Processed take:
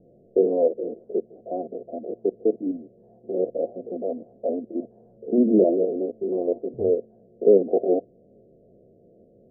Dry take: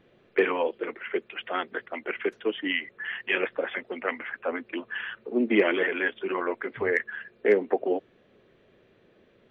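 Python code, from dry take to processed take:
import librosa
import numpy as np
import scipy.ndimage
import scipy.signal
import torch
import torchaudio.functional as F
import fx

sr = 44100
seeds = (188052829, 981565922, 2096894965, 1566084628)

y = fx.spec_steps(x, sr, hold_ms=50)
y = scipy.signal.sosfilt(scipy.signal.cheby1(6, 3, 710.0, 'lowpass', fs=sr, output='sos'), y)
y = y * librosa.db_to_amplitude(9.0)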